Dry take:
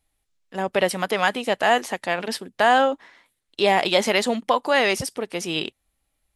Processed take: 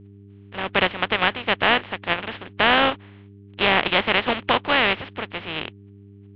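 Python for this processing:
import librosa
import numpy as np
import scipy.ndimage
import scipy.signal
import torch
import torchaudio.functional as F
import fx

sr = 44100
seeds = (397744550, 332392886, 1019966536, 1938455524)

p1 = fx.spec_flatten(x, sr, power=0.31)
p2 = fx.level_steps(p1, sr, step_db=23)
p3 = p1 + F.gain(torch.from_numpy(p2), -0.5).numpy()
p4 = fx.dmg_buzz(p3, sr, base_hz=100.0, harmonics=4, level_db=-44.0, tilt_db=-5, odd_only=False)
p5 = scipy.signal.sosfilt(scipy.signal.butter(8, 3300.0, 'lowpass', fs=sr, output='sos'), p4)
y = F.gain(torch.from_numpy(p5), -1.5).numpy()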